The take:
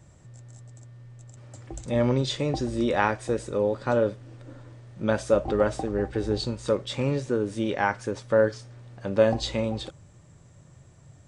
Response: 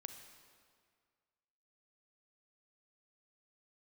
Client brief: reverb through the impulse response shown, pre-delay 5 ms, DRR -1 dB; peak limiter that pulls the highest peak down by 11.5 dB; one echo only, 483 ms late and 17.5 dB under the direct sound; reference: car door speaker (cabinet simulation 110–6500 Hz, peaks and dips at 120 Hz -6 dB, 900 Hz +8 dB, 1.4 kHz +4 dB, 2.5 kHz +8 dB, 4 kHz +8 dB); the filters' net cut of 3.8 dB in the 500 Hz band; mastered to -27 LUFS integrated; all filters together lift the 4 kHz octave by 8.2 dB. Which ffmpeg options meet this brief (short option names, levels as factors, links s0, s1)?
-filter_complex "[0:a]equalizer=f=500:t=o:g=-5,equalizer=f=4000:t=o:g=3,alimiter=limit=0.119:level=0:latency=1,aecho=1:1:483:0.133,asplit=2[s0][s1];[1:a]atrim=start_sample=2205,adelay=5[s2];[s1][s2]afir=irnorm=-1:irlink=0,volume=1.88[s3];[s0][s3]amix=inputs=2:normalize=0,highpass=110,equalizer=f=120:t=q:w=4:g=-6,equalizer=f=900:t=q:w=4:g=8,equalizer=f=1400:t=q:w=4:g=4,equalizer=f=2500:t=q:w=4:g=8,equalizer=f=4000:t=q:w=4:g=8,lowpass=f=6500:w=0.5412,lowpass=f=6500:w=1.3066,volume=0.841"